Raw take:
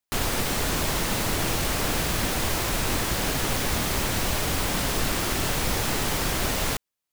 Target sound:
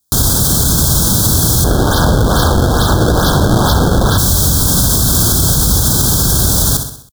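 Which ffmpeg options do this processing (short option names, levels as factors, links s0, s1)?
-filter_complex "[0:a]highpass=50,bass=f=250:g=15,treble=f=4000:g=13,asettb=1/sr,asplit=3[s0][s1][s2];[s0]atrim=end=1.644[s3];[s1]atrim=start=1.64:end=4.18,asetpts=PTS-STARTPTS,afade=t=in:d=0.004:c=qsin,afade=t=out:st=2.536:d=0.004:c=qsin,acrusher=samples=26:mix=1:aa=0.000001:lfo=1:lforange=41.6:lforate=2.3[s4];[s2]atrim=start=4.176[s5];[s3][s4]acrossfade=d=0.004:c1=hsin:c2=qsin[s6];[s6][s5]acrossfade=d=0.004:c1=qsin:c2=hsin,asuperstop=centerf=2300:order=20:qfactor=1.5,aecho=1:1:64|128|192|256|320:0.299|0.149|0.0746|0.0373|0.0187,alimiter=level_in=2.99:limit=0.891:release=50:level=0:latency=1,volume=0.891"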